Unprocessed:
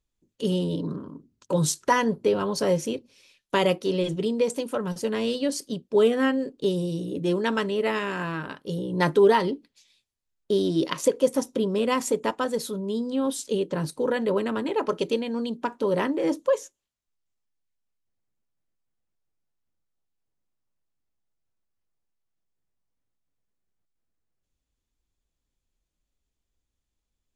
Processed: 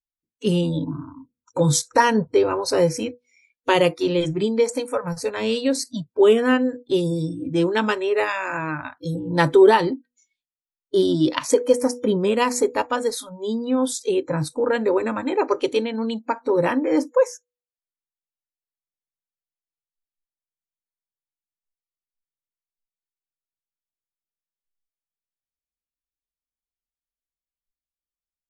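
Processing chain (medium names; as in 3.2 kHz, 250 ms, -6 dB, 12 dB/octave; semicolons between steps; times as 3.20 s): de-hum 254.6 Hz, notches 2; spectral noise reduction 27 dB; speed mistake 25 fps video run at 24 fps; trim +5 dB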